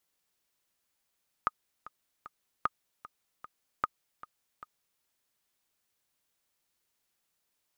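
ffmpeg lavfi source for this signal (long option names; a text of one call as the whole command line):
ffmpeg -f lavfi -i "aevalsrc='pow(10,(-13.5-18*gte(mod(t,3*60/152),60/152))/20)*sin(2*PI*1240*mod(t,60/152))*exp(-6.91*mod(t,60/152)/0.03)':duration=3.55:sample_rate=44100" out.wav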